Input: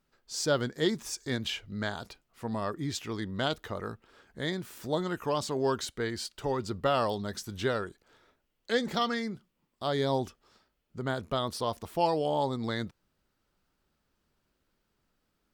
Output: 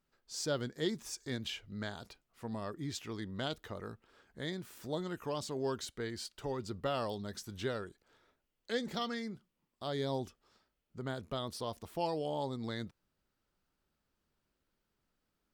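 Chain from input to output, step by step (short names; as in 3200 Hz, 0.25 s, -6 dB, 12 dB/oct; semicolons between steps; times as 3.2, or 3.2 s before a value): dynamic EQ 1100 Hz, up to -4 dB, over -40 dBFS, Q 0.77; gain -6 dB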